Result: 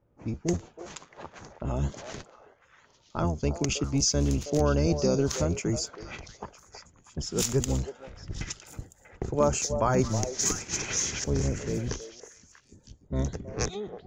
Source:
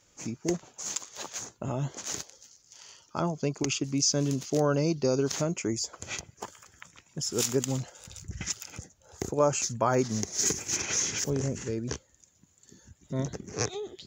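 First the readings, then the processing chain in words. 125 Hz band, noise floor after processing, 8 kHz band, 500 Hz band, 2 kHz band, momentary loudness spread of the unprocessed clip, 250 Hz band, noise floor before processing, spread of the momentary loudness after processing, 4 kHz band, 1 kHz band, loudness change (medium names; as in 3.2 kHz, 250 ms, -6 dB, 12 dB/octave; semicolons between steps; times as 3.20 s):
+3.5 dB, -62 dBFS, -1.0 dB, +0.5 dB, 0.0 dB, 14 LU, +1.5 dB, -65 dBFS, 19 LU, -0.5 dB, +0.5 dB, +1.5 dB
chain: octave divider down 1 oct, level +1 dB; hard clipper -11.5 dBFS, distortion -46 dB; level-controlled noise filter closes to 710 Hz, open at -24 dBFS; repeats whose band climbs or falls 320 ms, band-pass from 600 Hz, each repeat 1.4 oct, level -7 dB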